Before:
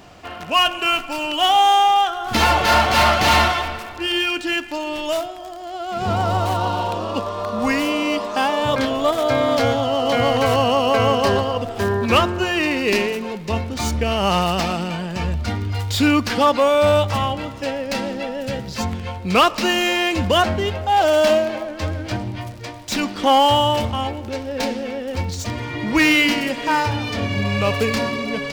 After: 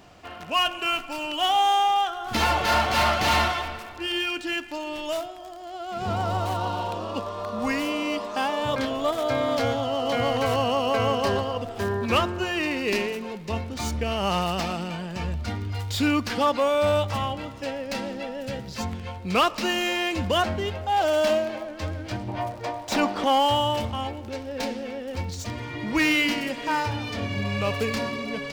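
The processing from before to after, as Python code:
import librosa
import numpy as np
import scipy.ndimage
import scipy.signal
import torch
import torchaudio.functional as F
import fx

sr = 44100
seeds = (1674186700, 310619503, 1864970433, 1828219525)

y = fx.peak_eq(x, sr, hz=740.0, db=14.0, octaves=1.9, at=(22.28, 23.24))
y = y * 10.0 ** (-6.5 / 20.0)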